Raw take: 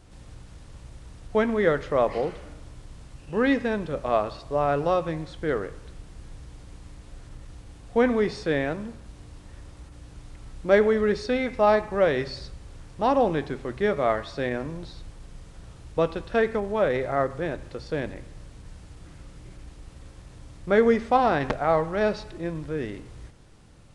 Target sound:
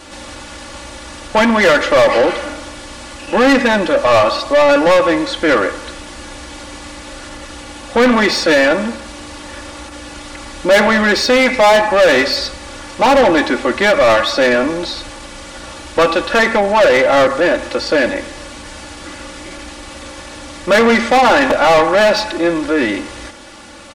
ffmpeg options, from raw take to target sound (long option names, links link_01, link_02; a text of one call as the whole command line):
ffmpeg -i in.wav -filter_complex "[0:a]aecho=1:1:3.5:0.92,asplit=2[link_01][link_02];[link_02]highpass=frequency=720:poles=1,volume=29dB,asoftclip=type=tanh:threshold=-2.5dB[link_03];[link_01][link_03]amix=inputs=2:normalize=0,lowpass=frequency=6900:poles=1,volume=-6dB" out.wav